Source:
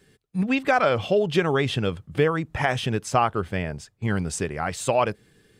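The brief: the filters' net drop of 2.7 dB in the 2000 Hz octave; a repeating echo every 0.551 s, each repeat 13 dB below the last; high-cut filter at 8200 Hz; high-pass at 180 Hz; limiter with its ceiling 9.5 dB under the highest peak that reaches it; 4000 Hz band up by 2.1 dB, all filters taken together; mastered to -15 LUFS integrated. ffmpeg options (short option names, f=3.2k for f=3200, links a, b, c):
-af "highpass=180,lowpass=8.2k,equalizer=f=2k:t=o:g=-5,equalizer=f=4k:t=o:g=5,alimiter=limit=-17dB:level=0:latency=1,aecho=1:1:551|1102|1653:0.224|0.0493|0.0108,volume=13.5dB"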